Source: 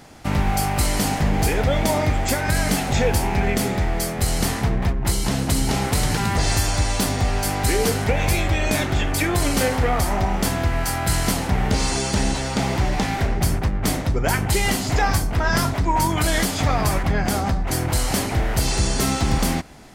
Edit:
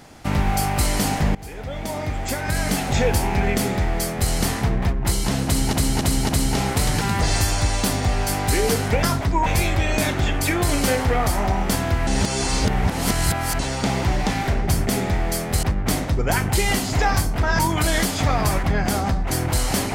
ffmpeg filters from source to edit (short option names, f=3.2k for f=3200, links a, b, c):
-filter_complex "[0:a]asplit=12[a][b][c][d][e][f][g][h][i][j][k][l];[a]atrim=end=1.35,asetpts=PTS-STARTPTS,afade=t=out:st=1.346:d=0.004:c=hsin:silence=0.0891251[m];[b]atrim=start=1.35:end=5.732,asetpts=PTS-STARTPTS,afade=t=in:d=1.65:silence=0.0891251[n];[c]atrim=start=5.448:end=5.732[o];[d]atrim=start=5.448:end=5.732[p];[e]atrim=start=5.448:end=8.192[q];[f]atrim=start=15.558:end=15.992[r];[g]atrim=start=8.188:end=10.802[s];[h]atrim=start=10.798:end=12.322,asetpts=PTS-STARTPTS,areverse[t];[i]atrim=start=12.318:end=13.602[u];[j]atrim=start=3.548:end=4.312[v];[k]atrim=start=13.598:end=15.562[w];[l]atrim=start=15.988[x];[m][n]concat=n=2:v=0:a=1[y];[y][o]acrossfade=d=0.004:c1=hsin:c2=hsin[z];[z][p]acrossfade=d=0.004:c1=hsin:c2=hsin[aa];[aa][q]acrossfade=d=0.004:c1=hsin:c2=hsin[ab];[ab][r]acrossfade=d=0.004:c1=hsin:c2=hsin[ac];[ac][s]acrossfade=d=0.004:c1=hsin:c2=hsin[ad];[ad][t]acrossfade=d=0.004:c1=hsin:c2=hsin[ae];[ae][u]acrossfade=d=0.004:c1=hsin:c2=hsin[af];[af][v]acrossfade=d=0.004:c1=hsin:c2=hsin[ag];[ag][w]acrossfade=d=0.004:c1=hsin:c2=hsin[ah];[ah][x]acrossfade=d=0.004:c1=hsin:c2=hsin"